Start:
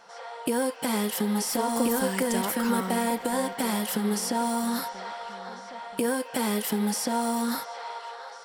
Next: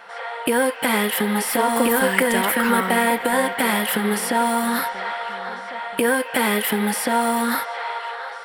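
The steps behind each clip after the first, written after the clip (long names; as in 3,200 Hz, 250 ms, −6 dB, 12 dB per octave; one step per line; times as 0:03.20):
drawn EQ curve 200 Hz 0 dB, 490 Hz +4 dB, 1,000 Hz +5 dB, 1,900 Hz +12 dB, 3,400 Hz +6 dB, 6,100 Hz −8 dB, 10,000 Hz +4 dB
level +3.5 dB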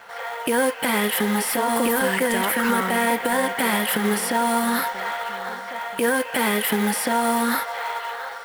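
brickwall limiter −11.5 dBFS, peak gain reduction 8.5 dB
dead-zone distortion −56.5 dBFS
floating-point word with a short mantissa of 2 bits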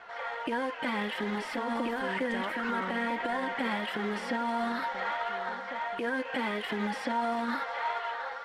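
brickwall limiter −17.5 dBFS, peak gain reduction 5.5 dB
flanger 1.5 Hz, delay 2.7 ms, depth 1.1 ms, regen +38%
high-frequency loss of the air 160 metres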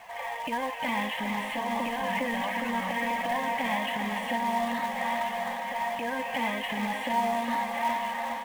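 phaser with its sweep stopped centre 1,400 Hz, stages 6
in parallel at −3.5 dB: log-companded quantiser 4 bits
on the sum: repeating echo 408 ms, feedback 60%, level −7 dB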